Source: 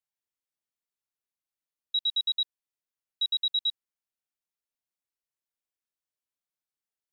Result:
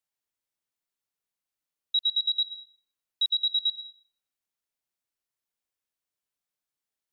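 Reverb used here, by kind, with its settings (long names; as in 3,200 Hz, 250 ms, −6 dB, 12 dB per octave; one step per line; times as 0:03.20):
dense smooth reverb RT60 0.59 s, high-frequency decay 0.8×, pre-delay 85 ms, DRR 14 dB
level +2.5 dB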